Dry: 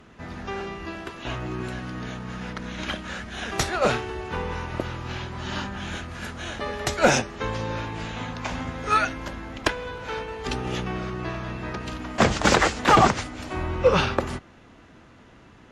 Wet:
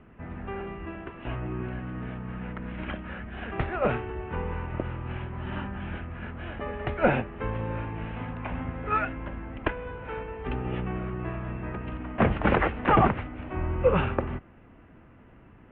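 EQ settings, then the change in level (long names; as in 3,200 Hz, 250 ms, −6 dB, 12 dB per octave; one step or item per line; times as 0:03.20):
Butterworth low-pass 2,900 Hz 48 dB per octave
spectral tilt −1.5 dB per octave
−5.0 dB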